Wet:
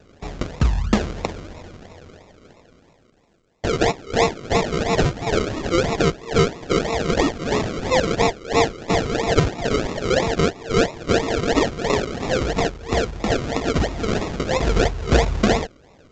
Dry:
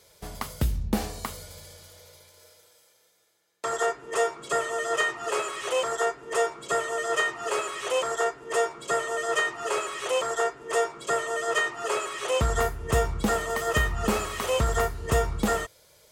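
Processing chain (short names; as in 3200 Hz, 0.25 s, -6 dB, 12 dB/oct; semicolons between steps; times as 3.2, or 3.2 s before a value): 12.11–14.67 low shelf 450 Hz -9.5 dB; decimation with a swept rate 40×, swing 60% 3 Hz; gain +7.5 dB; A-law 128 kbps 16000 Hz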